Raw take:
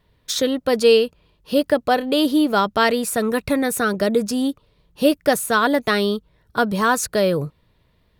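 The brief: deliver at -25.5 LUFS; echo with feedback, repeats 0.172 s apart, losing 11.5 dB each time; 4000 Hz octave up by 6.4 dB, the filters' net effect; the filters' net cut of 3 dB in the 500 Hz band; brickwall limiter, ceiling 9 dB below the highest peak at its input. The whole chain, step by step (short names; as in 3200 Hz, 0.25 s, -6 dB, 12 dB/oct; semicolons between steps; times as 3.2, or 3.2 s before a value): bell 500 Hz -3.5 dB; bell 4000 Hz +8 dB; limiter -12 dBFS; feedback echo 0.172 s, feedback 27%, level -11.5 dB; gain -3 dB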